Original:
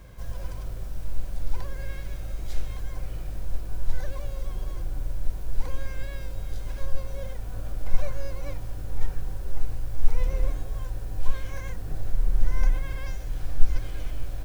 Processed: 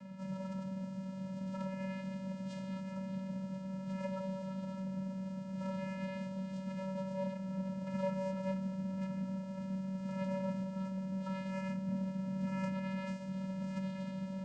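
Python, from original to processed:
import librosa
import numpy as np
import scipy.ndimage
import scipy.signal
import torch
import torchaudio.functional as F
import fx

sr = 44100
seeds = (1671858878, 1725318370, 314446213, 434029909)

y = fx.vocoder(x, sr, bands=8, carrier='square', carrier_hz=190.0)
y = y * 10.0 ** (3.5 / 20.0)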